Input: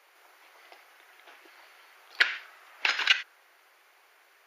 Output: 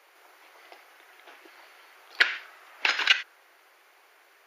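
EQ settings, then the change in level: low shelf 460 Hz +5.5 dB; +1.5 dB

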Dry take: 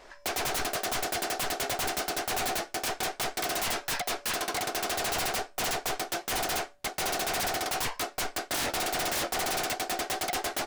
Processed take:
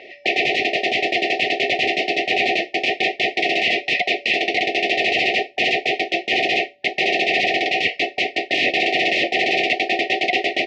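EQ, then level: brick-wall FIR band-stop 780–1800 Hz; speaker cabinet 180–4100 Hz, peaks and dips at 380 Hz +8 dB, 890 Hz +5 dB, 1600 Hz +8 dB, 2600 Hz +9 dB; bell 2200 Hz +3.5 dB 1.4 oct; +9.0 dB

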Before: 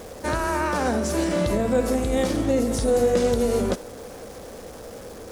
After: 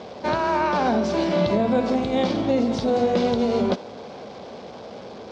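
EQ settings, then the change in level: air absorption 50 m; speaker cabinet 180–4600 Hz, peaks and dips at 300 Hz -8 dB, 490 Hz -8 dB, 1300 Hz -6 dB, 1800 Hz -9 dB, 2700 Hz -3 dB; +6.5 dB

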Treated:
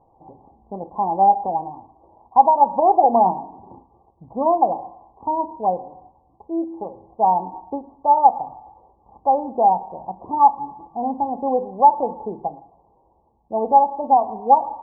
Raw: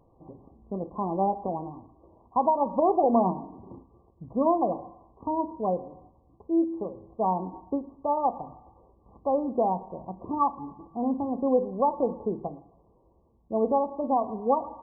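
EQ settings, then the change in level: synth low-pass 840 Hz, resonance Q 7.1; -2.0 dB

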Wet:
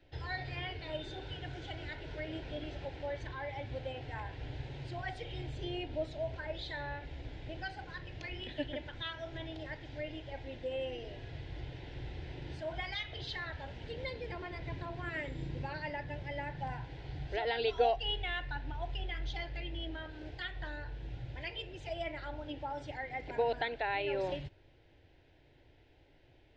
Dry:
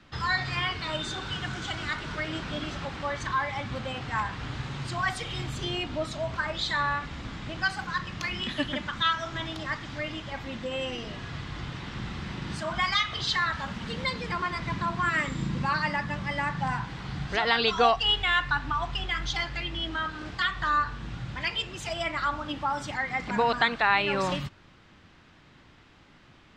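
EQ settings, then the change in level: dynamic EQ 7200 Hz, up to -4 dB, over -45 dBFS, Q 0.88; tape spacing loss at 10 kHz 25 dB; fixed phaser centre 490 Hz, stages 4; -2.0 dB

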